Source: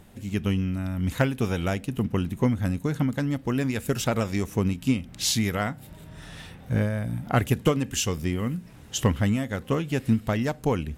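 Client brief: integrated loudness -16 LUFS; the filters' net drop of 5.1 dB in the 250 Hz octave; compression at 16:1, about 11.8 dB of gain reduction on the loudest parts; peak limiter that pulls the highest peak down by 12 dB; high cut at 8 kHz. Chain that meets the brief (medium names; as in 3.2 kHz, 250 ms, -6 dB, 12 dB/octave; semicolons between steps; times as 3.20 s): low-pass 8 kHz; peaking EQ 250 Hz -6.5 dB; compression 16:1, threshold -30 dBFS; trim +24 dB; peak limiter -6 dBFS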